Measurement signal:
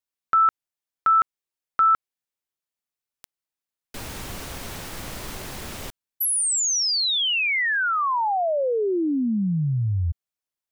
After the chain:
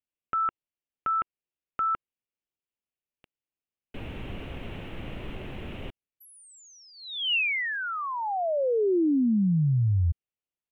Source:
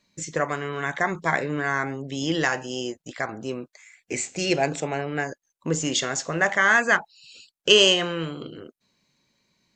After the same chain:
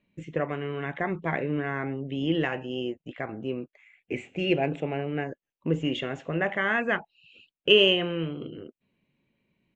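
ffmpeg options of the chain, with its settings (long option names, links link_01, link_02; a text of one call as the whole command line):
ffmpeg -i in.wav -af "firequalizer=gain_entry='entry(350,0);entry(1000,-9);entry(1600,-9);entry(2800,-1);entry(4700,-30)':delay=0.05:min_phase=1" out.wav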